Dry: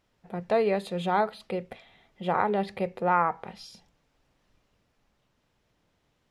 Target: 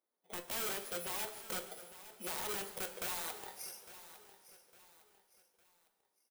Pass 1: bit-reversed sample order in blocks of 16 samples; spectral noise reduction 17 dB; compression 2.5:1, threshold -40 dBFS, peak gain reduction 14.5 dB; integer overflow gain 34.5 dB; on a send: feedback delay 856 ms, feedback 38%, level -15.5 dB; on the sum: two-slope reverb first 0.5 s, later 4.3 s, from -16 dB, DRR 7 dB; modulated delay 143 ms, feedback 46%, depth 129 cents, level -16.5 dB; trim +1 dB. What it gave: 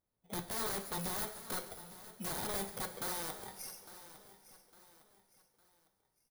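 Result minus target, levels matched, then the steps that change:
250 Hz band +6.0 dB
add after compression: high-pass 280 Hz 24 dB/octave

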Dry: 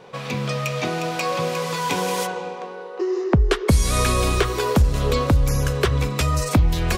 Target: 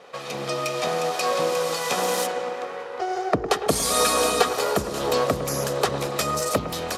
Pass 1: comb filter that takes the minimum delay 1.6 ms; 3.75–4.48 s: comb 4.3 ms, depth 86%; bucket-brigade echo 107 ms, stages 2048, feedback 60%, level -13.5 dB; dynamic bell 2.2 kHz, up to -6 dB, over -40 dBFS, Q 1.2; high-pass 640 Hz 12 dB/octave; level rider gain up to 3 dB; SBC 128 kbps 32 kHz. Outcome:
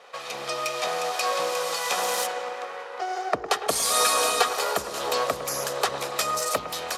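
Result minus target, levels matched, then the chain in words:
250 Hz band -9.5 dB
comb filter that takes the minimum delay 1.6 ms; 3.75–4.48 s: comb 4.3 ms, depth 86%; bucket-brigade echo 107 ms, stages 2048, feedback 60%, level -13.5 dB; dynamic bell 2.2 kHz, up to -6 dB, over -40 dBFS, Q 1.2; high-pass 280 Hz 12 dB/octave; level rider gain up to 3 dB; SBC 128 kbps 32 kHz

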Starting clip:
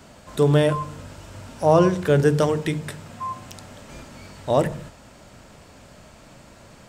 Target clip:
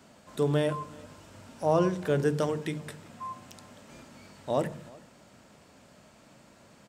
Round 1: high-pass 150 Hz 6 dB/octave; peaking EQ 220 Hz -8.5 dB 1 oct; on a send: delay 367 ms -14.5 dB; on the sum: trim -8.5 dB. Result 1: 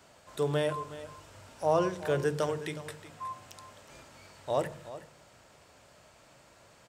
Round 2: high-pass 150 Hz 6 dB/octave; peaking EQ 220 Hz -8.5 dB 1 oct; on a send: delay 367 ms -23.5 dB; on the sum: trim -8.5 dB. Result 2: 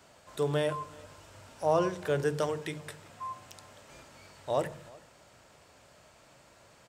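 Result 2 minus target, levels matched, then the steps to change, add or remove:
250 Hz band -4.0 dB
change: peaking EQ 220 Hz +3.5 dB 1 oct

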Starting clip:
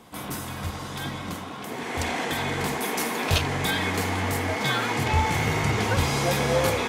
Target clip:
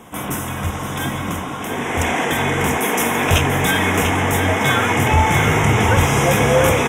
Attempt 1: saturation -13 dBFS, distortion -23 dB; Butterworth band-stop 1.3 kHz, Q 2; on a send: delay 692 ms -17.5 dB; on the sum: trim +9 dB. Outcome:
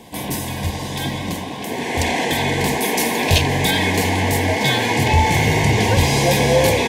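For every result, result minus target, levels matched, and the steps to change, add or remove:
echo-to-direct -10 dB; 4 kHz band +3.5 dB
change: delay 692 ms -7.5 dB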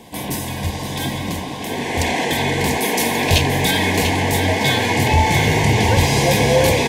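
4 kHz band +4.0 dB
change: Butterworth band-stop 4.4 kHz, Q 2

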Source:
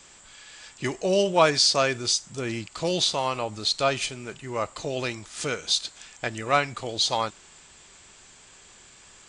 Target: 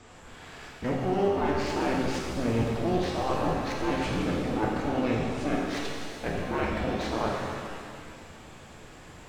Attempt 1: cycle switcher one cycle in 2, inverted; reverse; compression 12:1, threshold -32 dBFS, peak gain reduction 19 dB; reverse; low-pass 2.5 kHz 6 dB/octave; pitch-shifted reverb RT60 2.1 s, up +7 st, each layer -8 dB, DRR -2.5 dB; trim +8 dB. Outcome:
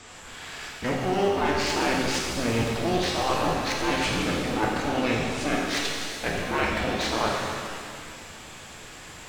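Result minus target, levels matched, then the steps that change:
2 kHz band +4.5 dB
change: low-pass 640 Hz 6 dB/octave

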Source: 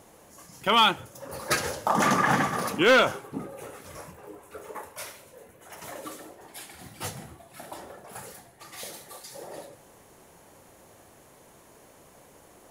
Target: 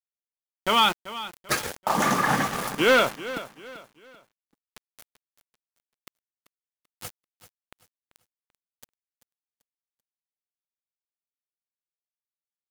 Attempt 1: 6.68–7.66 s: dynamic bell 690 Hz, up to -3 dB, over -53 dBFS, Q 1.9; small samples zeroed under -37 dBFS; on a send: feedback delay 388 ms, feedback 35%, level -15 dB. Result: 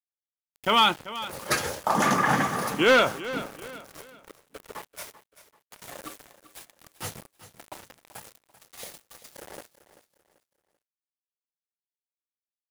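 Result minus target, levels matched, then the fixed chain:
small samples zeroed: distortion -6 dB
6.68–7.66 s: dynamic bell 690 Hz, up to -3 dB, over -53 dBFS, Q 1.9; small samples zeroed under -28 dBFS; on a send: feedback delay 388 ms, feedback 35%, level -15 dB

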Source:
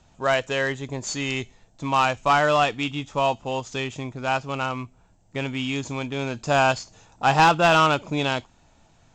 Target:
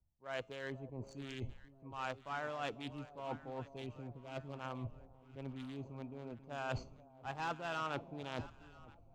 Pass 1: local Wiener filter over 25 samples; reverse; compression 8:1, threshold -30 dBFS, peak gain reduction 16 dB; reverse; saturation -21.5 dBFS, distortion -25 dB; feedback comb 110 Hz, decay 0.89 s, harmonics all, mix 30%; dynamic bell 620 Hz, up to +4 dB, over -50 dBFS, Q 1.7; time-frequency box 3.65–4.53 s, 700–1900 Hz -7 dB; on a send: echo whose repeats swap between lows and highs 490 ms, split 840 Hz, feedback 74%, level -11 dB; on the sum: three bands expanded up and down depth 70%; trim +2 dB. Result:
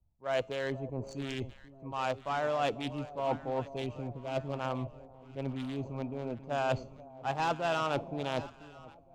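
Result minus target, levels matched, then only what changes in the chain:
compression: peak gain reduction -9 dB; 2 kHz band -3.5 dB
change: compression 8:1, threshold -40.5 dBFS, peak gain reduction 25 dB; change: dynamic bell 1.5 kHz, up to +4 dB, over -50 dBFS, Q 1.7

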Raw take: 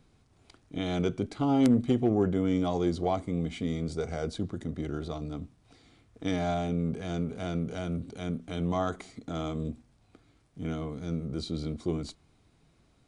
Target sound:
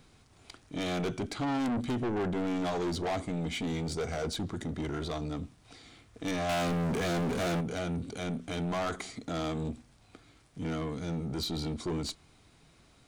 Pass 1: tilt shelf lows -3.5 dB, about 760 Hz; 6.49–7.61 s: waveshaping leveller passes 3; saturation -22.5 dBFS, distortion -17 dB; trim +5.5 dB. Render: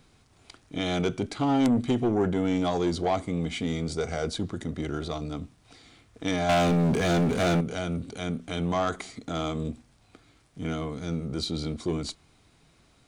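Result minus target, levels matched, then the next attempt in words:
saturation: distortion -11 dB
tilt shelf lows -3.5 dB, about 760 Hz; 6.49–7.61 s: waveshaping leveller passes 3; saturation -34 dBFS, distortion -6 dB; trim +5.5 dB

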